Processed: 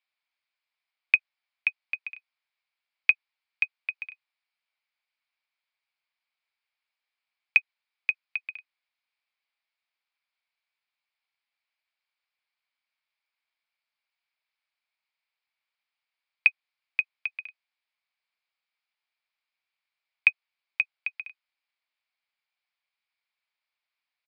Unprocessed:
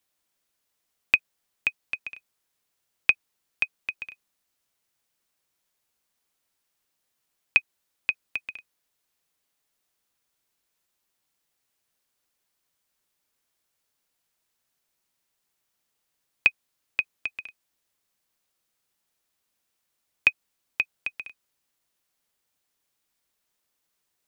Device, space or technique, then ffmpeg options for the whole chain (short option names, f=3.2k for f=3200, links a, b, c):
musical greeting card: -af "aresample=11025,aresample=44100,highpass=f=700:w=0.5412,highpass=f=700:w=1.3066,equalizer=f=2.3k:t=o:w=0.29:g=11,volume=-6.5dB"